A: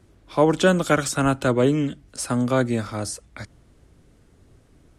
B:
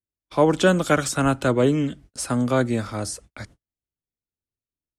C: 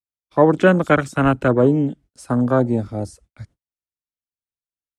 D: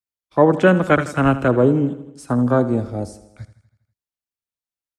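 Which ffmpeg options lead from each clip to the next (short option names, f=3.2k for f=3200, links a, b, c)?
-af "agate=range=-43dB:threshold=-44dB:ratio=16:detection=peak"
-af "afwtdn=0.0447,volume=4dB"
-af "aecho=1:1:81|162|243|324|405|486:0.178|0.105|0.0619|0.0365|0.0215|0.0127"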